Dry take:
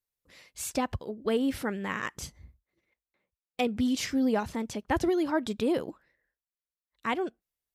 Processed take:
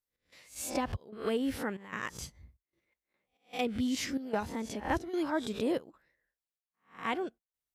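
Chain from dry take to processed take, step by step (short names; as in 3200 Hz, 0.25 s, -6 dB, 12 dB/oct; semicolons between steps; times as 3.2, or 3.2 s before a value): spectral swells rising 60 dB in 0.33 s; step gate "xx..xxxxxx" 187 bpm -12 dB; gain -4.5 dB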